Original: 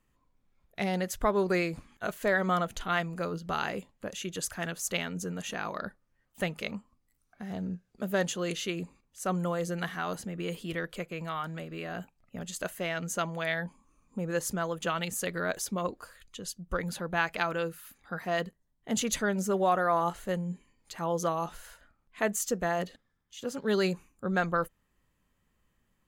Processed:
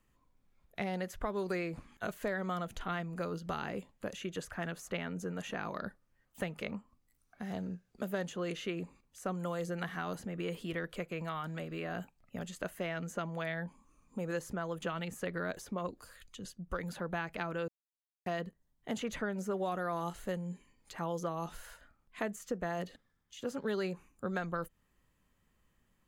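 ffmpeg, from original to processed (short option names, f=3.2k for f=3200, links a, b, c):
-filter_complex "[0:a]asettb=1/sr,asplit=3[a][b][c];[a]atrim=end=15.904[d];[b]atrim=start=15.9:end=16.45,asetpts=PTS-STARTPTS,afade=t=in:d=0.004:c=qsin,afade=t=out:st=0.546:d=0.004:c=qsin,acrossover=split=300|3000[e][f][g];[f]acompressor=threshold=-53dB:ratio=6:attack=3.2:release=140:knee=2.83:detection=peak[h];[e][h][g]amix=inputs=3:normalize=0[i];[c]atrim=start=16.446[j];[d][i]acrossfade=d=0.004:c1=hsin:c2=qsin[k];[k][j]acrossfade=d=0.004:c1=qsin:c2=hsin,asplit=3[l][m][n];[l]atrim=end=17.68,asetpts=PTS-STARTPTS,afade=t=out:st=17.676:d=0.004:c=hsin[o];[m]atrim=start=17.68:end=18.26,asetpts=PTS-STARTPTS,volume=0[p];[n]atrim=start=18.26,asetpts=PTS-STARTPTS,afade=t=in:d=0.004:c=hsin[q];[o][p][q]concat=n=3:v=0:a=1,acrossover=split=370|2500[r][s][t];[r]acompressor=threshold=-39dB:ratio=4[u];[s]acompressor=threshold=-37dB:ratio=4[v];[t]acompressor=threshold=-53dB:ratio=4[w];[u][v][w]amix=inputs=3:normalize=0"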